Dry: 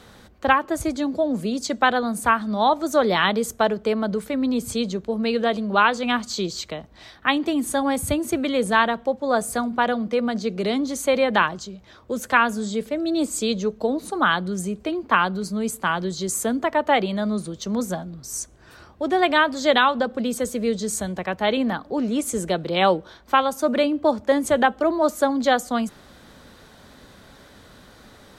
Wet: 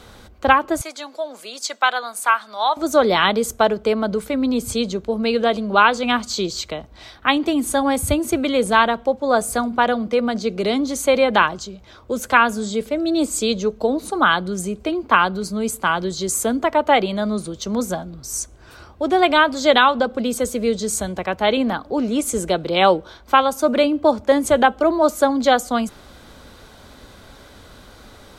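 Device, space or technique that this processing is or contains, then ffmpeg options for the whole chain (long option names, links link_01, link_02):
low shelf boost with a cut just above: -filter_complex "[0:a]bandreject=frequency=1800:width=11,asettb=1/sr,asplit=3[link_01][link_02][link_03];[link_01]atrim=end=0.814[link_04];[link_02]atrim=start=0.81:end=2.77,asetpts=PTS-STARTPTS,afade=type=in:duration=0.004:curve=qsin,afade=type=out:start_time=1.956:duration=0.004:curve=qsin,highpass=940[link_05];[link_03]atrim=start=2.766[link_06];[link_04][link_05]acrossfade=duration=0.004:curve1=hsin:curve2=qsin[link_07];[link_07][link_06]acrossfade=duration=0.004:curve1=qsin:curve2=hsin,lowshelf=frequency=86:gain=6,equalizer=frequency=170:width_type=o:width=1:gain=-5,volume=4dB"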